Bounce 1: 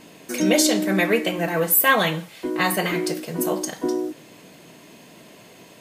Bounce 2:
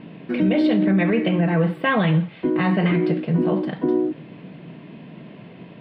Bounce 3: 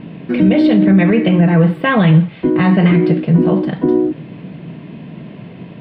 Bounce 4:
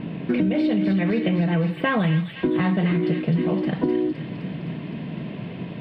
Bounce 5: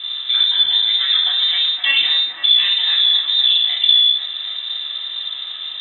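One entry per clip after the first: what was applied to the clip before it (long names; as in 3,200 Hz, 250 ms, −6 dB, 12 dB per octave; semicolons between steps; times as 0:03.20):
inverse Chebyshev low-pass filter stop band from 6,100 Hz, stop band 40 dB; parametric band 160 Hz +13.5 dB 1.7 octaves; brickwall limiter −11 dBFS, peak gain reduction 9.5 dB
low-shelf EQ 150 Hz +10 dB; level +5 dB
downward compressor, threshold −19 dBFS, peak gain reduction 13 dB; delay with a high-pass on its return 257 ms, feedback 75%, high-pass 2,600 Hz, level −4 dB
convolution reverb RT60 0.50 s, pre-delay 3 ms, DRR −6 dB; voice inversion scrambler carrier 3,800 Hz; level −10.5 dB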